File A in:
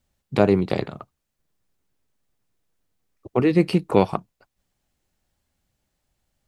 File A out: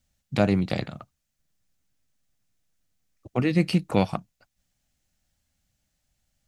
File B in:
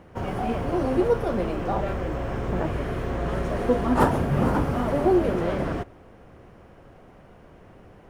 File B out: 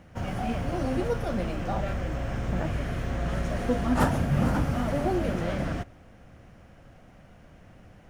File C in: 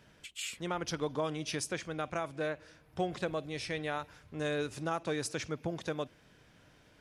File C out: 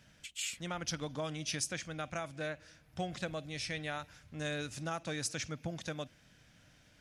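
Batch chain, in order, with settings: fifteen-band EQ 400 Hz -11 dB, 1000 Hz -7 dB, 6300 Hz +4 dB

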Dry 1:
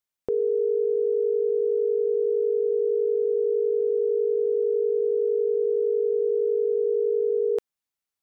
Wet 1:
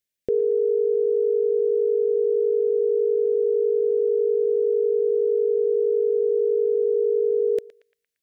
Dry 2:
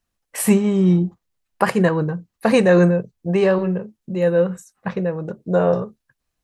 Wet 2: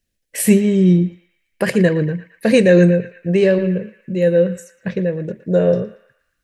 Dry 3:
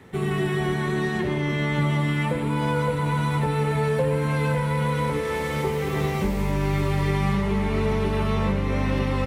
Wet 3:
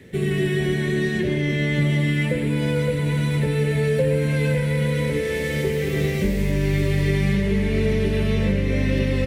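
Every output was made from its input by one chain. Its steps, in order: band shelf 1000 Hz -15 dB 1.1 oct; on a send: narrowing echo 0.115 s, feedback 58%, band-pass 1900 Hz, level -12.5 dB; on the sum: gain +3 dB

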